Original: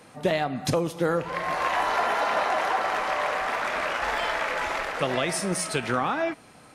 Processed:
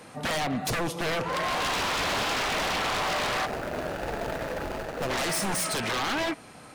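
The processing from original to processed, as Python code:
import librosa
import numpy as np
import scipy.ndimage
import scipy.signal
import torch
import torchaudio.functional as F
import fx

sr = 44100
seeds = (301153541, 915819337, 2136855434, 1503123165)

y = fx.median_filter(x, sr, points=41, at=(3.45, 5.09), fade=0.02)
y = 10.0 ** (-26.5 / 20.0) * (np.abs((y / 10.0 ** (-26.5 / 20.0) + 3.0) % 4.0 - 2.0) - 1.0)
y = y * librosa.db_to_amplitude(3.5)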